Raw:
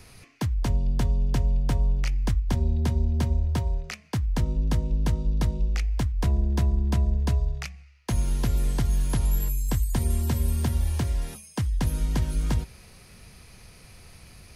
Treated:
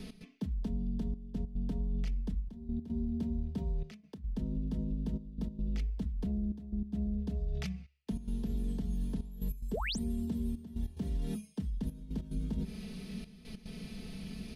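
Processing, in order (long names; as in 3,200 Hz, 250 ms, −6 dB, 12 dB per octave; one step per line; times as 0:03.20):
dynamic equaliser 3,100 Hz, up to −6 dB, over −52 dBFS, Q 0.73
sound drawn into the spectrogram rise, 0:09.73–0:09.99, 350–9,900 Hz −20 dBFS
drawn EQ curve 120 Hz 0 dB, 190 Hz +14 dB, 1,100 Hz −8 dB, 2,300 Hz −3 dB, 3,400 Hz +4 dB, 6,800 Hz −8 dB
reversed playback
downward compressor 5 to 1, threshold −32 dBFS, peak gain reduction 17 dB
reversed playback
comb filter 4.6 ms, depth 67%
brickwall limiter −27 dBFS, peak gain reduction 8.5 dB
gate pattern "x.xxxxxxxxx.." 145 BPM −12 dB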